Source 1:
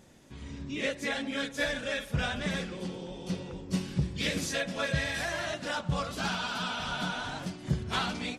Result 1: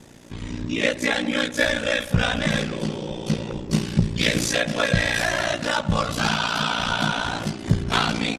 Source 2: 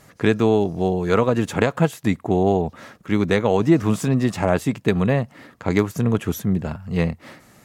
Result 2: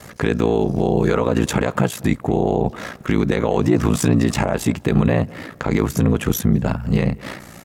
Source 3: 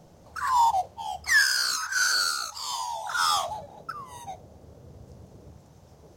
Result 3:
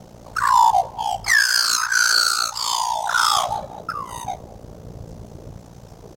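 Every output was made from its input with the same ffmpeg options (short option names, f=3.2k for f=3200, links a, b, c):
-filter_complex "[0:a]asplit=2[a][b];[b]acompressor=threshold=-28dB:ratio=6,volume=-2.5dB[c];[a][c]amix=inputs=2:normalize=0,alimiter=limit=-13.5dB:level=0:latency=1:release=45,aeval=exprs='val(0)*sin(2*PI*29*n/s)':c=same,asplit=2[d][e];[e]adelay=198,lowpass=f=1.4k:p=1,volume=-22dB,asplit=2[f][g];[g]adelay=198,lowpass=f=1.4k:p=1,volume=0.39,asplit=2[h][i];[i]adelay=198,lowpass=f=1.4k:p=1,volume=0.39[j];[d][f][h][j]amix=inputs=4:normalize=0,volume=8.5dB"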